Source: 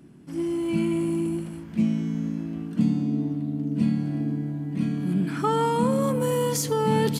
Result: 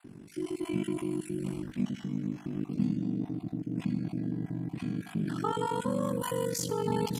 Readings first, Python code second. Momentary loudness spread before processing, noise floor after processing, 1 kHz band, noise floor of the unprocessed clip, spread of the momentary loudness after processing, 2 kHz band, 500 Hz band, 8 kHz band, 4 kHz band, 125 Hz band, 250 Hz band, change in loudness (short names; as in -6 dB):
7 LU, -50 dBFS, -8.0 dB, -38 dBFS, 5 LU, -7.0 dB, -8.0 dB, n/a, -6.5 dB, -7.5 dB, -8.0 dB, -7.5 dB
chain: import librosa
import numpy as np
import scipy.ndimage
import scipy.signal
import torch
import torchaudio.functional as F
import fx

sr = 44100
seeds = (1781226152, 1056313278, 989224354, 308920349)

p1 = fx.spec_dropout(x, sr, seeds[0], share_pct=25)
p2 = fx.over_compress(p1, sr, threshold_db=-35.0, ratio=-1.0)
p3 = p1 + (p2 * librosa.db_to_amplitude(-2.5))
p4 = p3 * np.sin(2.0 * np.pi * 24.0 * np.arange(len(p3)) / sr)
p5 = fx.echo_feedback(p4, sr, ms=77, feedback_pct=49, wet_db=-17.0)
y = p5 * librosa.db_to_amplitude(-5.5)